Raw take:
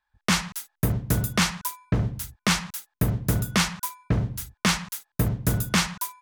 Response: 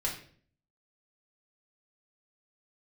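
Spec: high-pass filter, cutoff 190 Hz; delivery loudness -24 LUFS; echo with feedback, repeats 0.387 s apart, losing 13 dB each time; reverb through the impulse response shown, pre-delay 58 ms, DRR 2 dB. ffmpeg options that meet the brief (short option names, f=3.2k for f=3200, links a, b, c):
-filter_complex "[0:a]highpass=190,aecho=1:1:387|774|1161:0.224|0.0493|0.0108,asplit=2[a][b];[1:a]atrim=start_sample=2205,adelay=58[c];[b][c]afir=irnorm=-1:irlink=0,volume=-6.5dB[d];[a][d]amix=inputs=2:normalize=0,volume=1.5dB"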